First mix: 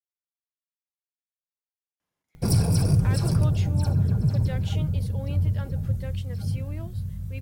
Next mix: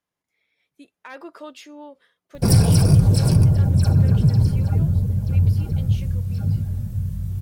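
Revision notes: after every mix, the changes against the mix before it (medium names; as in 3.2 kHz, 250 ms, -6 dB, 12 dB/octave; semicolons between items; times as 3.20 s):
speech: entry -2.00 s; background +6.5 dB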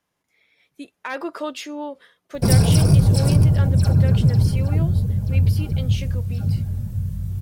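speech +9.5 dB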